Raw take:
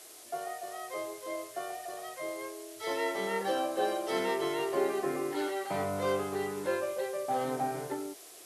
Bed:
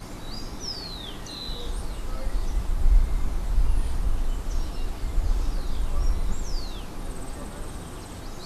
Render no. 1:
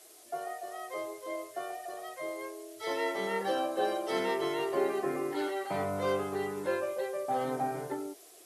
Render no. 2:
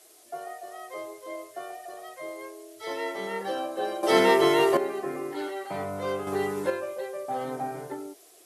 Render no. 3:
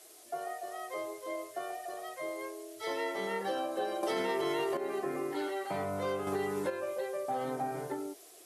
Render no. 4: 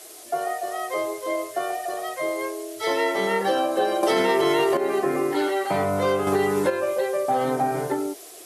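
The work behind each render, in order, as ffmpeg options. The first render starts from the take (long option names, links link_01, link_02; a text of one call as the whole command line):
ffmpeg -i in.wav -af "afftdn=noise_reduction=6:noise_floor=-51" out.wav
ffmpeg -i in.wav -filter_complex "[0:a]asplit=5[link_01][link_02][link_03][link_04][link_05];[link_01]atrim=end=4.032[link_06];[link_02]atrim=start=4.028:end=4.772,asetpts=PTS-STARTPTS,volume=11.5dB[link_07];[link_03]atrim=start=4.768:end=6.272[link_08];[link_04]atrim=start=6.268:end=6.702,asetpts=PTS-STARTPTS,volume=6dB[link_09];[link_05]atrim=start=6.698[link_10];[link_06][link_07]acrossfade=duration=0.004:curve1=hsin:curve2=hsin[link_11];[link_11][link_08]acrossfade=duration=0.004:curve1=hsin:curve2=hsin[link_12];[link_12][link_09]acrossfade=duration=0.004:curve1=hsin:curve2=hsin[link_13];[link_13][link_10]acrossfade=duration=0.004:curve1=hsin:curve2=hsin" out.wav
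ffmpeg -i in.wav -af "alimiter=limit=-18.5dB:level=0:latency=1:release=200,acompressor=threshold=-33dB:ratio=2" out.wav
ffmpeg -i in.wav -af "volume=12dB" out.wav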